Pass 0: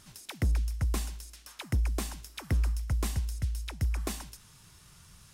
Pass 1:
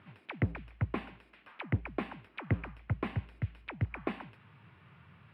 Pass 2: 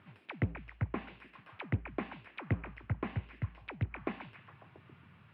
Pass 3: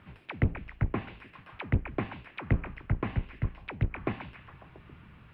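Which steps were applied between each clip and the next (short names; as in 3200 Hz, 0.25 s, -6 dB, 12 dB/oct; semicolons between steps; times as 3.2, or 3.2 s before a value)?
elliptic band-pass 100–2500 Hz, stop band 40 dB; gain +2.5 dB
delay with a stepping band-pass 0.137 s, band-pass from 3400 Hz, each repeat -0.7 oct, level -7 dB; treble ducked by the level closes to 2400 Hz, closed at -29 dBFS; gain -2 dB
octaver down 1 oct, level -1 dB; gain +4.5 dB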